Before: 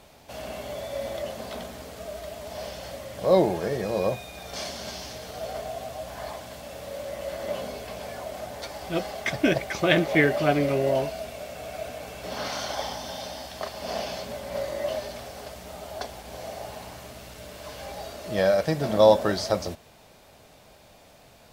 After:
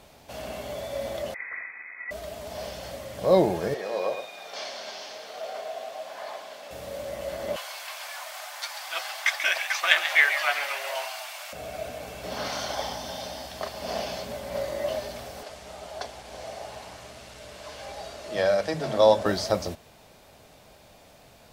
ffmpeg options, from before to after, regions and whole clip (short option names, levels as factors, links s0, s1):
-filter_complex "[0:a]asettb=1/sr,asplit=3[s0][s1][s2];[s0]atrim=end=1.344[s3];[s1]atrim=start=1.34:end=2.11,asetpts=PTS-STARTPTS,afade=t=in:d=0.004:c=qsin,afade=t=out:st=0.766:d=0.004:c=qsin,lowshelf=f=370:t=q:w=1.5:g=-7,adynamicsmooth=sensitivity=6:basefreq=850,lowpass=f=2200:t=q:w=0.5098,lowpass=f=2200:t=q:w=0.6013,lowpass=f=2200:t=q:w=0.9,lowpass=f=2200:t=q:w=2.563,afreqshift=-2600[s4];[s2]atrim=start=2.106[s5];[s3][s4]acrossfade=d=0.004:c1=hsin:c2=qsin[s6];[s6][s5]acrossfade=d=0.004:c1=qsin:c2=hsin,asettb=1/sr,asplit=3[s7][s8][s9];[s7]atrim=end=3.744[s10];[s8]atrim=start=3.74:end=6.71,asetpts=PTS-STARTPTS,afade=t=in:d=0.004:c=qsin,afade=t=out:st=2.966:d=0.004:c=qsin,acrossover=split=5700[s11][s12];[s12]acompressor=threshold=0.00112:ratio=4:attack=1:release=60[s13];[s11][s13]amix=inputs=2:normalize=0,highpass=510,aecho=1:1:112:0.355,atrim=end_sample=130977[s14];[s9]atrim=start=6.706[s15];[s10][s14]acrossfade=d=0.004:c1=hsin:c2=qsin[s16];[s16][s15]acrossfade=d=0.004:c1=qsin:c2=hsin,asettb=1/sr,asplit=3[s17][s18][s19];[s17]atrim=end=7.564[s20];[s18]atrim=start=7.56:end=11.53,asetpts=PTS-STARTPTS,afade=t=in:d=0.004:c=qsin,afade=t=out:st=3.966:d=0.004:c=qsin,highpass=f=970:w=0.5412,highpass=f=970:w=1.3066,acontrast=27,asplit=7[s21][s22][s23][s24][s25][s26][s27];[s22]adelay=137,afreqshift=110,volume=0.316[s28];[s23]adelay=274,afreqshift=220,volume=0.164[s29];[s24]adelay=411,afreqshift=330,volume=0.0851[s30];[s25]adelay=548,afreqshift=440,volume=0.0447[s31];[s26]adelay=685,afreqshift=550,volume=0.0232[s32];[s27]adelay=822,afreqshift=660,volume=0.012[s33];[s21][s28][s29][s30][s31][s32][s33]amix=inputs=7:normalize=0,atrim=end_sample=175077[s34];[s19]atrim=start=11.526[s35];[s20][s34]acrossfade=d=0.004:c1=hsin:c2=qsin[s36];[s36][s35]acrossfade=d=0.004:c1=qsin:c2=hsin,asettb=1/sr,asplit=3[s37][s38][s39];[s37]atrim=end=15.434[s40];[s38]atrim=start=15.43:end=19.26,asetpts=PTS-STARTPTS,afade=t=in:d=0.004:c=qsin,afade=t=out:st=3.826:d=0.004:c=qsin,lowpass=9200,lowshelf=f=360:g=-5,acrossover=split=210[s41][s42];[s41]adelay=60[s43];[s43][s42]amix=inputs=2:normalize=0,atrim=end_sample=168903[s44];[s39]atrim=start=19.256[s45];[s40][s44]acrossfade=d=0.004:c1=hsin:c2=qsin[s46];[s46][s45]acrossfade=d=0.004:c1=qsin:c2=hsin"